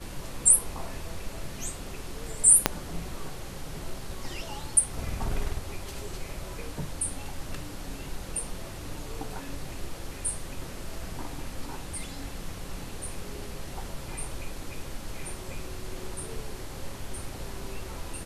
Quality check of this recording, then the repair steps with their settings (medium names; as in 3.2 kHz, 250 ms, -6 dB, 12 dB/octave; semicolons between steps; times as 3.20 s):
2.66 s: pop -2 dBFS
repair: de-click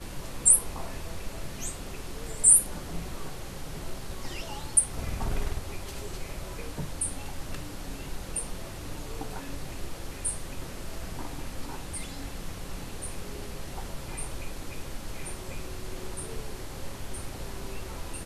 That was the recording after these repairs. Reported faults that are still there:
2.66 s: pop